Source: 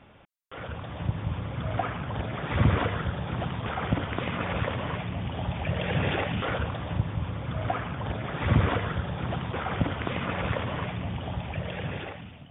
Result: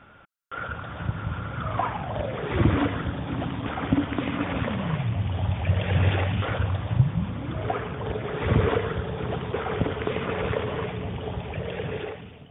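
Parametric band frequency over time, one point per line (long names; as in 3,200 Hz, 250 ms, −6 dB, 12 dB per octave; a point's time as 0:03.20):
parametric band +14.5 dB 0.3 octaves
0:01.59 1,400 Hz
0:02.75 280 Hz
0:04.53 280 Hz
0:05.24 95 Hz
0:06.84 95 Hz
0:07.67 430 Hz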